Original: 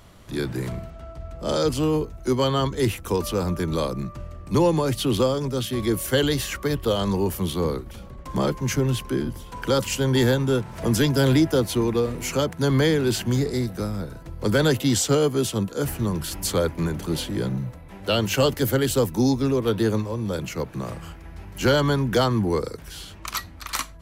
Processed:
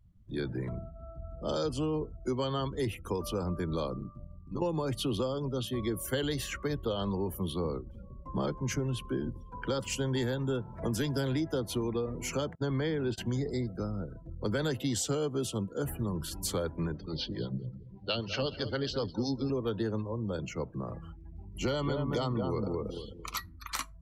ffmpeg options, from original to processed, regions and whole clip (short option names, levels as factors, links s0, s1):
-filter_complex "[0:a]asettb=1/sr,asplit=3[s0][s1][s2];[s0]atrim=end=3.974[s3];[s1]atrim=start=3.97:end=4.62,asetpts=PTS-STARTPTS,afade=t=in:d=0.004:c=qsin,afade=t=out:st=0.646:d=0.004:c=qsin,bandreject=f=490:w=5.9,acompressor=threshold=0.0794:ratio=3:attack=3.2:release=140:knee=1:detection=peak,tremolo=f=99:d=0.857[s4];[s2]atrim=start=4.616[s5];[s3][s4]acrossfade=d=0.004:c1=hsin:c2=qsin[s6];[s6][s5]acrossfade=d=0.004:c1=qsin:c2=hsin,asettb=1/sr,asplit=3[s7][s8][s9];[s7]atrim=end=12.554[s10];[s8]atrim=start=12.55:end=13.18,asetpts=PTS-STARTPTS,afade=t=in:d=0.004:c=qsin,afade=t=out:st=0.626:d=0.004:c=qsin,lowpass=f=4000:p=1,agate=range=0.0501:threshold=0.0501:ratio=16:release=100:detection=peak[s11];[s9]atrim=start=13.176[s12];[s10][s11]acrossfade=d=0.004:c1=hsin:c2=qsin[s13];[s13][s12]acrossfade=d=0.004:c1=qsin:c2=hsin,asettb=1/sr,asplit=3[s14][s15][s16];[s14]atrim=end=16.924[s17];[s15]atrim=start=16.92:end=19.5,asetpts=PTS-STARTPTS,afade=t=in:d=0.004:c=qsin,afade=t=out:st=2.576:d=0.004:c=qsin,highshelf=f=7000:t=q:w=3:g=-14,acrossover=split=500[s18][s19];[s18]aeval=exprs='val(0)*(1-0.7/2+0.7/2*cos(2*PI*7.9*n/s))':c=same[s20];[s19]aeval=exprs='val(0)*(1-0.7/2-0.7/2*cos(2*PI*7.9*n/s))':c=same[s21];[s20][s21]amix=inputs=2:normalize=0,aecho=1:1:206|412|618|824:0.224|0.094|0.0395|0.0166,atrim=end_sample=113778[s22];[s16]atrim=start=19.496[s23];[s17][s22]acrossfade=d=0.004:c1=hsin:c2=qsin[s24];[s24][s23]acrossfade=d=0.004:c1=qsin:c2=hsin,asettb=1/sr,asplit=3[s25][s26][s27];[s25]atrim=end=21.314[s28];[s26]atrim=start=21.31:end=23.37,asetpts=PTS-STARTPTS,afade=t=in:d=0.004:c=qsin,afade=t=out:st=2.056:d=0.004:c=qsin,asuperstop=centerf=1600:order=4:qfactor=5,asplit=2[s29][s30];[s30]adelay=225,lowpass=f=1300:p=1,volume=0.668,asplit=2[s31][s32];[s32]adelay=225,lowpass=f=1300:p=1,volume=0.32,asplit=2[s33][s34];[s34]adelay=225,lowpass=f=1300:p=1,volume=0.32,asplit=2[s35][s36];[s36]adelay=225,lowpass=f=1300:p=1,volume=0.32[s37];[s29][s31][s33][s35][s37]amix=inputs=5:normalize=0,atrim=end_sample=90846[s38];[s27]atrim=start=23.366[s39];[s28][s38]acrossfade=d=0.004:c1=hsin:c2=qsin[s40];[s40][s39]acrossfade=d=0.004:c1=qsin:c2=hsin,afftdn=nr=30:nf=-38,acompressor=threshold=0.0891:ratio=6,volume=0.473"